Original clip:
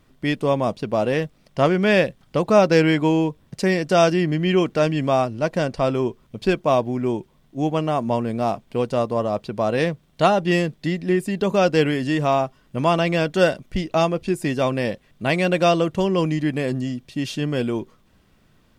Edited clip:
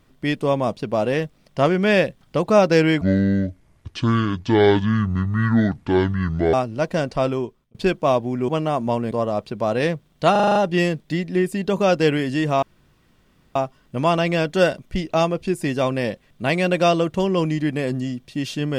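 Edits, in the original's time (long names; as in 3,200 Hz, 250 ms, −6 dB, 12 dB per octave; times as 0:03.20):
0:03.01–0:05.16: play speed 61%
0:05.90–0:06.37: fade out
0:07.11–0:07.70: remove
0:08.33–0:09.09: remove
0:10.29: stutter 0.04 s, 7 plays
0:12.36: splice in room tone 0.93 s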